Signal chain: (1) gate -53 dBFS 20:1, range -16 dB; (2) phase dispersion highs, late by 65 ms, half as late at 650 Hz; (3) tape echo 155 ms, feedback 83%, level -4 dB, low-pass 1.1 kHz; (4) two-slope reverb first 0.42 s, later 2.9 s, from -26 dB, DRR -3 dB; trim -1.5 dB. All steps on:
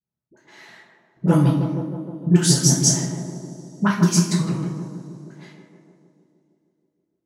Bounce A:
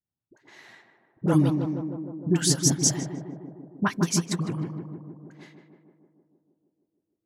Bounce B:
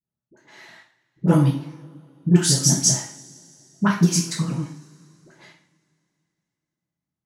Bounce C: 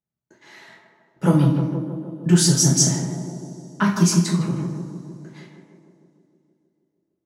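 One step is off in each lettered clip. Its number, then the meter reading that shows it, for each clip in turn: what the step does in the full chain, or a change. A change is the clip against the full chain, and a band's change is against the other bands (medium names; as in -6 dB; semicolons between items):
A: 4, echo-to-direct 4.0 dB to -9.0 dB; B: 3, momentary loudness spread change -3 LU; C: 2, crest factor change -2.0 dB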